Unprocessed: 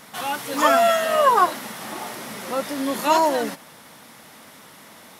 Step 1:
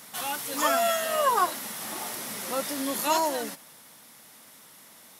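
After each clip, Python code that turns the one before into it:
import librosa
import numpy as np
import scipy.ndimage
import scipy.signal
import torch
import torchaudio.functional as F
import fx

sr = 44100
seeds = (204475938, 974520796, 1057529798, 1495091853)

y = scipy.signal.sosfilt(scipy.signal.butter(2, 56.0, 'highpass', fs=sr, output='sos'), x)
y = fx.high_shelf(y, sr, hz=4500.0, db=11.5)
y = fx.rider(y, sr, range_db=10, speed_s=2.0)
y = F.gain(torch.from_numpy(y), -9.0).numpy()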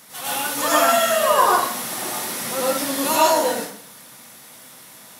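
y = fx.rev_plate(x, sr, seeds[0], rt60_s=0.56, hf_ratio=0.85, predelay_ms=85, drr_db=-7.5)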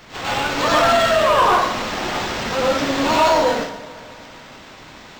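y = np.clip(10.0 ** (14.5 / 20.0) * x, -1.0, 1.0) / 10.0 ** (14.5 / 20.0)
y = fx.echo_tape(y, sr, ms=221, feedback_pct=69, wet_db=-14.5, lp_hz=2400.0, drive_db=19.0, wow_cents=19)
y = np.interp(np.arange(len(y)), np.arange(len(y))[::4], y[::4])
y = F.gain(torch.from_numpy(y), 4.0).numpy()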